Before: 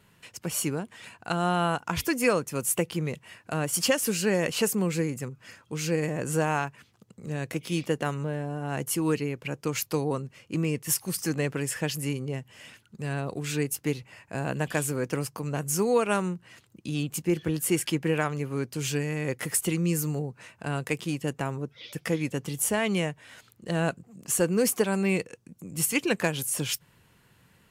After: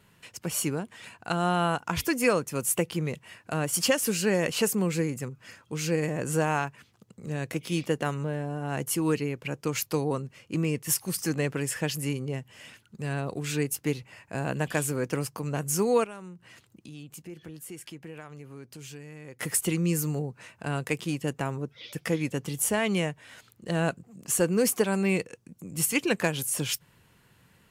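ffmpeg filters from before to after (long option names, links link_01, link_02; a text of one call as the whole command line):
ffmpeg -i in.wav -filter_complex "[0:a]asettb=1/sr,asplit=3[link_01][link_02][link_03];[link_01]atrim=end=16.044[link_04];[link_02]atrim=start=16.04:end=19.4,asetpts=PTS-STARTPTS,afade=type=in:duration=0.004:curve=qsin,afade=type=out:start_time=3.356:duration=0.004:curve=qsin,acompressor=threshold=-47dB:ratio=2.5:attack=3.2:release=140:knee=1:detection=peak[link_05];[link_03]atrim=start=19.396[link_06];[link_04][link_05]acrossfade=duration=0.004:curve1=hsin:curve2=qsin[link_07];[link_07][link_06]acrossfade=duration=0.004:curve1=qsin:curve2=hsin" out.wav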